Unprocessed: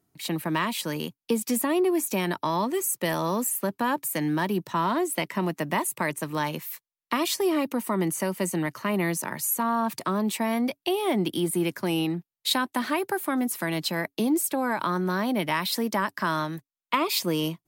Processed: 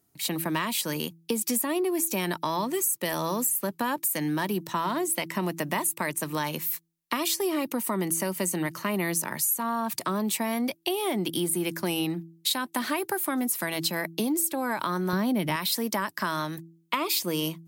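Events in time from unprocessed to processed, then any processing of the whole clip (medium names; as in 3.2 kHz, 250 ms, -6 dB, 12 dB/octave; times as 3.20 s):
15.13–15.56 s: bass shelf 340 Hz +11.5 dB
whole clip: treble shelf 4.5 kHz +8.5 dB; de-hum 165.3 Hz, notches 2; compression 4:1, threshold -24 dBFS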